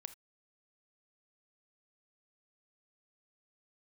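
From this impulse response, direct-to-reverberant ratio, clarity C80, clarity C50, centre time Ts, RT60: 11.5 dB, 22.5 dB, 14.5 dB, 4 ms, non-exponential decay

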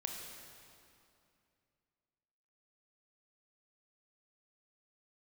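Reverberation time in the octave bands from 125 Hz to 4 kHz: 3.0, 2.9, 2.6, 2.5, 2.3, 2.1 seconds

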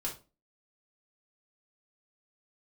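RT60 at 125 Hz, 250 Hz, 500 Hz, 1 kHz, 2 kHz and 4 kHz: 0.35, 0.45, 0.35, 0.30, 0.25, 0.25 seconds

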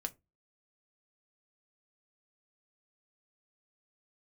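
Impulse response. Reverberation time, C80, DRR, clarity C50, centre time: 0.20 s, 32.0 dB, 5.0 dB, 24.0 dB, 4 ms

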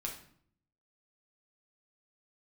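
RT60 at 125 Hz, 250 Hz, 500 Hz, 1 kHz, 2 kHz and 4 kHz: 0.95, 0.85, 0.60, 0.55, 0.50, 0.45 seconds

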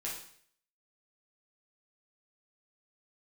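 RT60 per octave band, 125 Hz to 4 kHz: 0.60, 0.60, 0.60, 0.55, 0.60, 0.60 seconds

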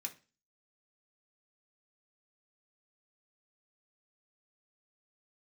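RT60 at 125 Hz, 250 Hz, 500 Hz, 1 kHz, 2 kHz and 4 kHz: 0.40, 0.40, 0.35, 0.30, 0.35, 0.35 seconds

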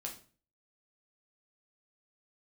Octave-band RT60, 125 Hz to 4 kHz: 0.55, 0.50, 0.45, 0.40, 0.35, 0.35 seconds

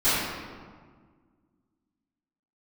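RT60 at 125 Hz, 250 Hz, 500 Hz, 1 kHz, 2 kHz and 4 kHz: 2.2, 2.4, 1.7, 1.6, 1.3, 1.0 seconds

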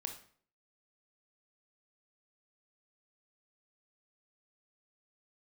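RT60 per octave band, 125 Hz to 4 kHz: 0.55, 0.55, 0.55, 0.50, 0.45, 0.40 seconds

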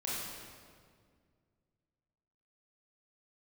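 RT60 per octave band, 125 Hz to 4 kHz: 2.9, 2.5, 2.2, 1.8, 1.6, 1.4 seconds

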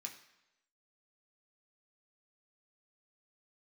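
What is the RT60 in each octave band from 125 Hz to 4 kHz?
0.80, 0.85, 0.95, 0.90, 0.95, 0.90 seconds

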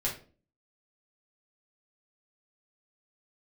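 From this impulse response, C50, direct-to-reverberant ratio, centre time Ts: 8.5 dB, −5.0 dB, 23 ms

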